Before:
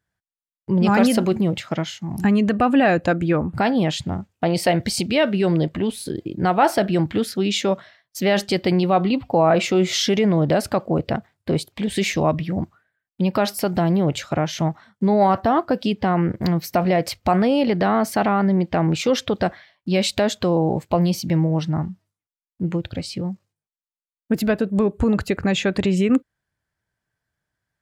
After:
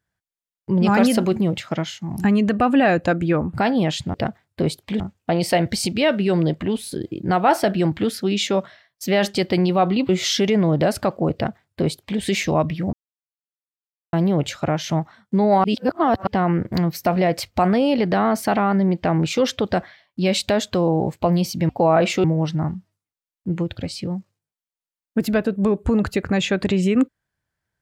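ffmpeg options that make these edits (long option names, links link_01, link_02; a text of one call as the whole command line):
ffmpeg -i in.wav -filter_complex "[0:a]asplit=10[link_01][link_02][link_03][link_04][link_05][link_06][link_07][link_08][link_09][link_10];[link_01]atrim=end=4.142[link_11];[link_02]atrim=start=11.028:end=11.892[link_12];[link_03]atrim=start=4.138:end=9.232[link_13];[link_04]atrim=start=9.778:end=12.62,asetpts=PTS-STARTPTS,afade=type=out:start_time=2.838:duration=0.004:curve=hsin[link_14];[link_05]atrim=start=12.62:end=13.82,asetpts=PTS-STARTPTS,volume=0[link_15];[link_06]atrim=start=13.82:end=15.332,asetpts=PTS-STARTPTS,afade=type=in:duration=0.004:curve=hsin[link_16];[link_07]atrim=start=15.328:end=15.962,asetpts=PTS-STARTPTS,areverse[link_17];[link_08]atrim=start=15.958:end=21.382[link_18];[link_09]atrim=start=9.228:end=9.782[link_19];[link_10]atrim=start=21.378[link_20];[link_11][link_12]acrossfade=duration=0.004:curve1=hsin:curve2=hsin[link_21];[link_21][link_13]acrossfade=duration=0.004:curve1=hsin:curve2=hsin[link_22];[link_14][link_15][link_16]concat=n=3:v=0:a=1[link_23];[link_22][link_23]acrossfade=duration=0.004:curve1=hsin:curve2=hsin[link_24];[link_24][link_17]acrossfade=duration=0.004:curve1=hsin:curve2=hsin[link_25];[link_25][link_18]acrossfade=duration=0.004:curve1=hsin:curve2=hsin[link_26];[link_26][link_19]acrossfade=duration=0.004:curve1=hsin:curve2=hsin[link_27];[link_27][link_20]acrossfade=duration=0.004:curve1=hsin:curve2=hsin" out.wav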